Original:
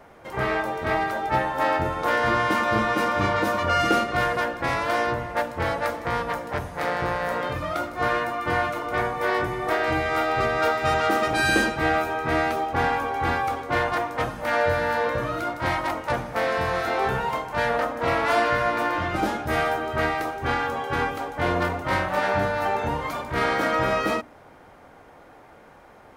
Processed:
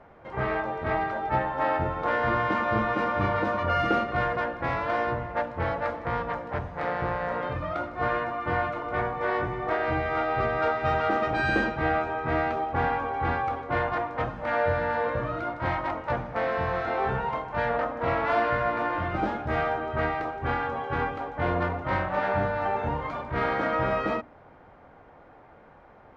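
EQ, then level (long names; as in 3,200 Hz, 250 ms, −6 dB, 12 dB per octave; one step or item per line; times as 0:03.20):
head-to-tape spacing loss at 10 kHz 25 dB
parametric band 320 Hz −3 dB 1.4 octaves
high-shelf EQ 7,800 Hz −10 dB
0.0 dB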